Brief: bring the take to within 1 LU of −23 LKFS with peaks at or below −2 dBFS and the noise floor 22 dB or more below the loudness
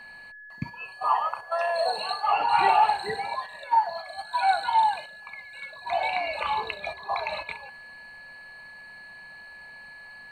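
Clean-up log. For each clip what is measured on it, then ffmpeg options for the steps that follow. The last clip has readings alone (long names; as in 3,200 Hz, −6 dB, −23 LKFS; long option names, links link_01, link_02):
interfering tone 1,700 Hz; level of the tone −43 dBFS; integrated loudness −26.0 LKFS; sample peak −9.0 dBFS; target loudness −23.0 LKFS
→ -af "bandreject=frequency=1700:width=30"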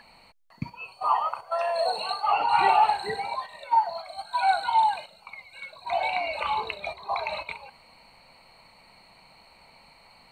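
interfering tone none found; integrated loudness −26.0 LKFS; sample peak −9.0 dBFS; target loudness −23.0 LKFS
→ -af "volume=3dB"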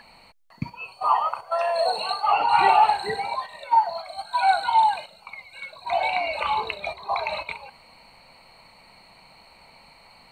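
integrated loudness −23.0 LKFS; sample peak −6.0 dBFS; background noise floor −53 dBFS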